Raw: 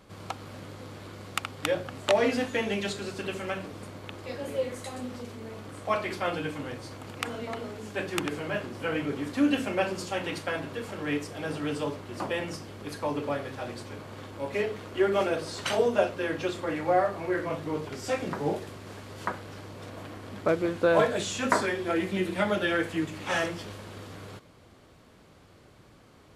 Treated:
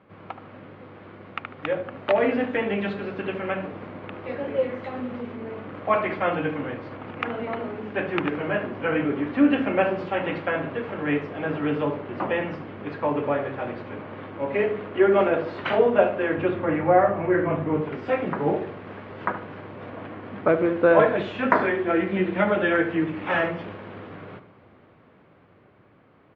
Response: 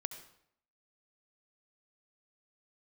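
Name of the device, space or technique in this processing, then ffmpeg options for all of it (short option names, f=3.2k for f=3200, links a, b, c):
action camera in a waterproof case: -filter_complex "[0:a]highpass=110,asettb=1/sr,asplit=3[a][b][c];[a]atrim=end=16.364[d];[b]atrim=start=16.36:end=17.81,asetpts=PTS-STARTPTS,afade=t=in:d=0.004:c=qsin,afade=t=out:st=1.446:d=0.004:c=qsin,bass=f=250:g=7,treble=f=4k:g=-9[e];[c]atrim=start=17.806[f];[d][e]acrossfade=d=0.004:c1=hsin:c2=qsin[g];[g][f]acrossfade=d=0.004:c1=qsin:c2=hsin,lowpass=f=2.5k:w=0.5412,lowpass=f=2.5k:w=1.3066,asplit=2[h][i];[i]adelay=74,lowpass=f=1.5k:p=1,volume=-10dB,asplit=2[j][k];[k]adelay=74,lowpass=f=1.5k:p=1,volume=0.47,asplit=2[l][m];[m]adelay=74,lowpass=f=1.5k:p=1,volume=0.47,asplit=2[n][o];[o]adelay=74,lowpass=f=1.5k:p=1,volume=0.47,asplit=2[p][q];[q]adelay=74,lowpass=f=1.5k:p=1,volume=0.47[r];[h][j][l][n][p][r]amix=inputs=6:normalize=0,dynaudnorm=f=150:g=31:m=6dB" -ar 44100 -c:a aac -b:a 48k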